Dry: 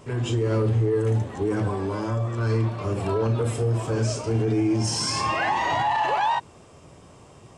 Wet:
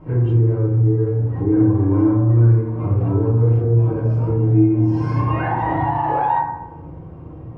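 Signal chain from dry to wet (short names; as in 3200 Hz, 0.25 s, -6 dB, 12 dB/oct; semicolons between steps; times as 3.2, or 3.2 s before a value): LPF 2100 Hz 12 dB/oct; tilt -3 dB/oct; compressor, threshold -21 dBFS, peak gain reduction 11 dB; reverb RT60 0.90 s, pre-delay 3 ms, DRR -8 dB; gain -5.5 dB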